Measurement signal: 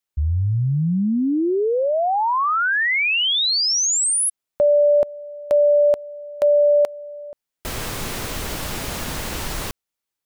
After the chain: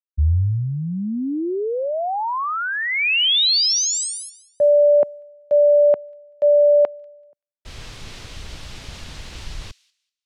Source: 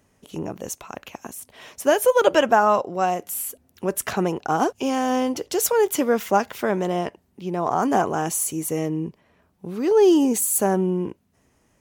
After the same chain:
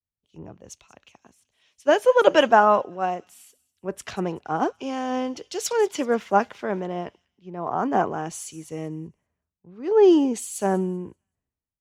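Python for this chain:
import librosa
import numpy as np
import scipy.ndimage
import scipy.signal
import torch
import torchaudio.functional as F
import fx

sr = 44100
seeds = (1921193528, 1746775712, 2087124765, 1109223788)

p1 = scipy.signal.sosfilt(scipy.signal.butter(2, 4800.0, 'lowpass', fs=sr, output='sos'), x)
p2 = p1 + fx.echo_wet_highpass(p1, sr, ms=192, feedback_pct=50, hz=3200.0, wet_db=-14.0, dry=0)
p3 = fx.band_widen(p2, sr, depth_pct=100)
y = F.gain(torch.from_numpy(p3), -3.5).numpy()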